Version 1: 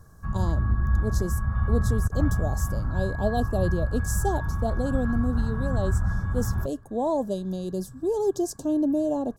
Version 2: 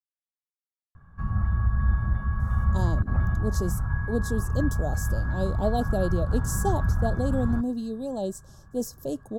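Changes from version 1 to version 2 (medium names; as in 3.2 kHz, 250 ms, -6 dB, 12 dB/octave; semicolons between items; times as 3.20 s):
speech: entry +2.40 s; background: entry +0.95 s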